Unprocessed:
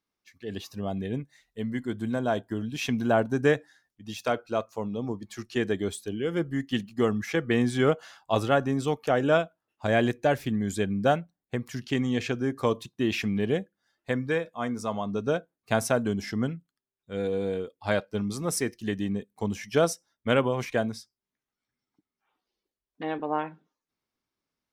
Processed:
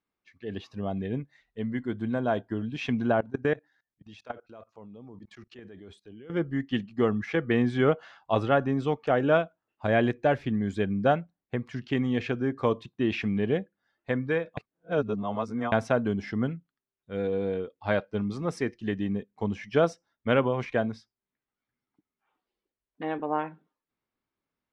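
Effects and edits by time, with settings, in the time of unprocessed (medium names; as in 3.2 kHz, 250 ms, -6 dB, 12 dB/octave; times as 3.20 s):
3.12–6.30 s: level held to a coarse grid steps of 23 dB
14.57–15.72 s: reverse
whole clip: low-pass 2.9 kHz 12 dB/octave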